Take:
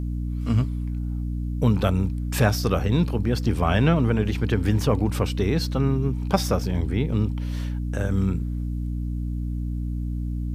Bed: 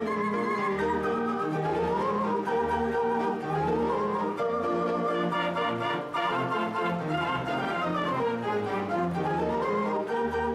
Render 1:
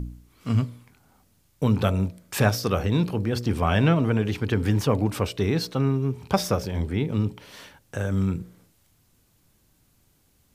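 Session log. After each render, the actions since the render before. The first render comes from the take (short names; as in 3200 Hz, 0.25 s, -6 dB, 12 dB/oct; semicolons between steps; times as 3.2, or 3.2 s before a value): de-hum 60 Hz, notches 11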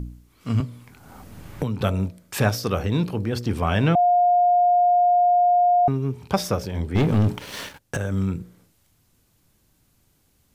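0.6–1.81 three-band squash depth 100%; 3.95–5.88 bleep 710 Hz -14 dBFS; 6.95–7.97 sample leveller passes 3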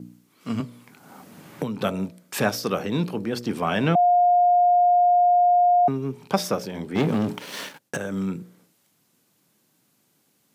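HPF 160 Hz 24 dB/oct; gate with hold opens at -60 dBFS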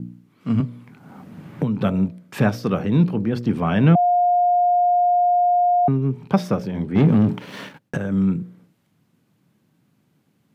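tone controls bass +12 dB, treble -12 dB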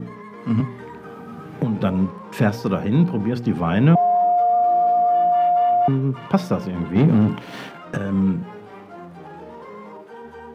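add bed -10.5 dB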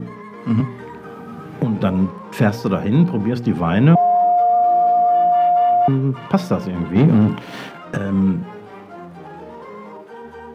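gain +2.5 dB; limiter -1 dBFS, peak gain reduction 1.5 dB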